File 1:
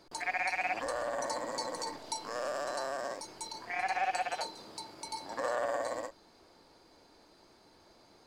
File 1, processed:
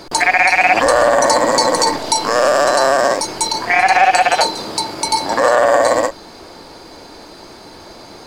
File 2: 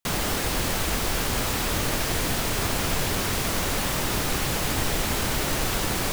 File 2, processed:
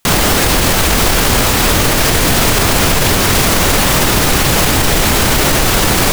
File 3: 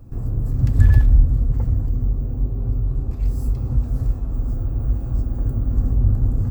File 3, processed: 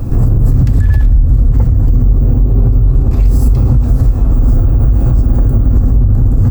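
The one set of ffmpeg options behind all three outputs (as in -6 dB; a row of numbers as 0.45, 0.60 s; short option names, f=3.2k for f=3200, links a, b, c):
-af "acompressor=threshold=-26dB:ratio=6,alimiter=level_in=25dB:limit=-1dB:release=50:level=0:latency=1,volume=-1dB"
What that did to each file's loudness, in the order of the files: +22.5, +14.5, +10.0 LU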